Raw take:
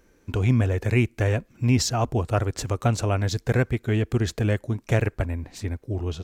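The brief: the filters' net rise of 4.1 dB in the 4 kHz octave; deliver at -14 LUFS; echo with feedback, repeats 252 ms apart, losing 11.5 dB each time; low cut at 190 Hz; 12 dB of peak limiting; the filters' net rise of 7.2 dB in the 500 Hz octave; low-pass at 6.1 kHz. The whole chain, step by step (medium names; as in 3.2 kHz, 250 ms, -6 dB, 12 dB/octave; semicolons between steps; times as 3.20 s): high-pass 190 Hz; low-pass 6.1 kHz; peaking EQ 500 Hz +9 dB; peaking EQ 4 kHz +6.5 dB; peak limiter -16 dBFS; feedback delay 252 ms, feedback 27%, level -11.5 dB; trim +13.5 dB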